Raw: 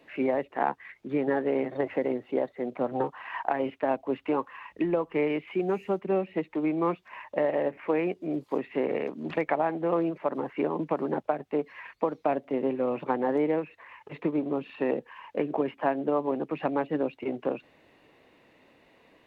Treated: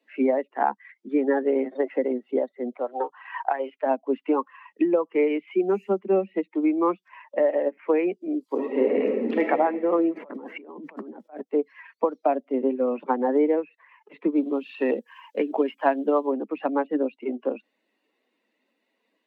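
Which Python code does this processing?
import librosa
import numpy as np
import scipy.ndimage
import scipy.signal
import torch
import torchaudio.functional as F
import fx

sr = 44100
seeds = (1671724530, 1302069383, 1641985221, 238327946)

y = fx.peak_eq(x, sr, hz=210.0, db=-14.5, octaves=0.77, at=(2.7, 3.86))
y = fx.reverb_throw(y, sr, start_s=8.49, length_s=0.93, rt60_s=2.6, drr_db=-1.5)
y = fx.over_compress(y, sr, threshold_db=-38.0, ratio=-1.0, at=(10.15, 11.4), fade=0.02)
y = fx.high_shelf(y, sr, hz=3000.0, db=11.0, at=(14.36, 16.27))
y = fx.bin_expand(y, sr, power=1.5)
y = scipy.signal.sosfilt(scipy.signal.butter(12, 200.0, 'highpass', fs=sr, output='sos'), y)
y = fx.high_shelf(y, sr, hz=3100.0, db=-10.5)
y = y * librosa.db_to_amplitude(7.5)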